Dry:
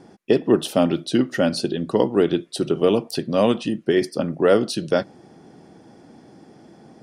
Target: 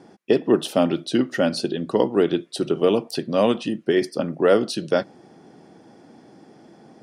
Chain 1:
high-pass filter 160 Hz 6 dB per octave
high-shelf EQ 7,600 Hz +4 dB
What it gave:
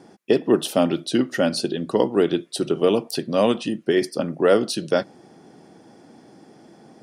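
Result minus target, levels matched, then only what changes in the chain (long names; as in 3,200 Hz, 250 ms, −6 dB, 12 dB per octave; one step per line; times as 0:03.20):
8,000 Hz band +4.0 dB
change: high-shelf EQ 7,600 Hz −4 dB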